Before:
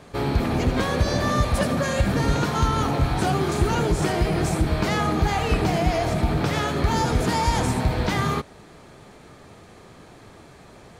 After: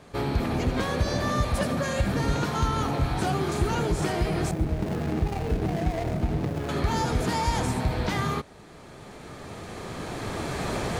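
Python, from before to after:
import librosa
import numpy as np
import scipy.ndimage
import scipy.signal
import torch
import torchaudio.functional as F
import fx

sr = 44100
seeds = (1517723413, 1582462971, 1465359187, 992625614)

y = fx.median_filter(x, sr, points=41, at=(4.51, 6.69))
y = fx.recorder_agc(y, sr, target_db=-15.0, rise_db_per_s=9.5, max_gain_db=30)
y = y * librosa.db_to_amplitude(-4.0)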